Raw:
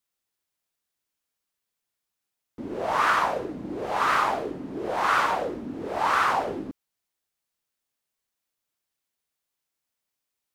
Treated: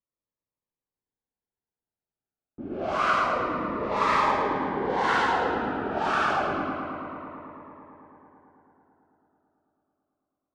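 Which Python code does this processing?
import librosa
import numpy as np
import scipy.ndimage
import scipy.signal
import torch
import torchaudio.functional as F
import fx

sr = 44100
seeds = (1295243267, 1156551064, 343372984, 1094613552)

p1 = fx.env_lowpass(x, sr, base_hz=970.0, full_db=-21.0)
p2 = fx.rider(p1, sr, range_db=10, speed_s=2.0)
p3 = fx.air_absorb(p2, sr, metres=87.0)
p4 = p3 + fx.echo_filtered(p3, sr, ms=110, feedback_pct=84, hz=4900.0, wet_db=-6.5, dry=0)
y = fx.notch_cascade(p4, sr, direction='falling', hz=0.27)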